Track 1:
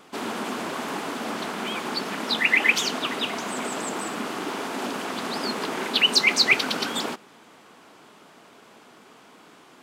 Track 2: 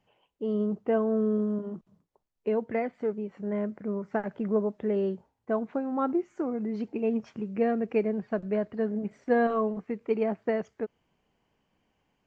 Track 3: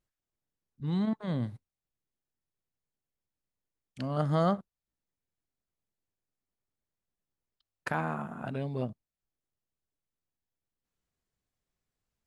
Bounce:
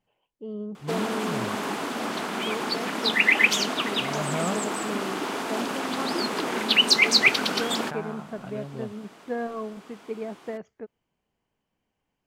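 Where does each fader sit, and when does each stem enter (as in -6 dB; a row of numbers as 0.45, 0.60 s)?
+0.5, -6.5, -4.0 dB; 0.75, 0.00, 0.00 s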